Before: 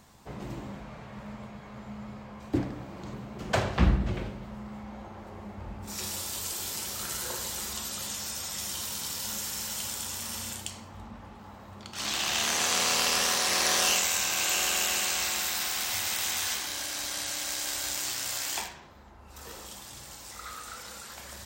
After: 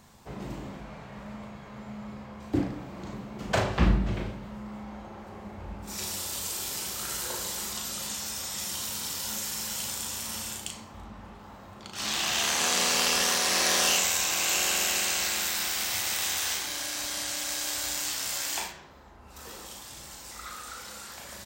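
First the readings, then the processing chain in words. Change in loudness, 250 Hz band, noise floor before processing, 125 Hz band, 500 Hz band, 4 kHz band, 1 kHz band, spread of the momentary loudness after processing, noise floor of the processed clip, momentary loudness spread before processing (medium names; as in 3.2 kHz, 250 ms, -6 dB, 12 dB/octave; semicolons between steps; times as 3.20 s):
+1.0 dB, +1.5 dB, -48 dBFS, 0.0 dB, +1.5 dB, +1.0 dB, +0.5 dB, 20 LU, -48 dBFS, 20 LU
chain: doubling 37 ms -5.5 dB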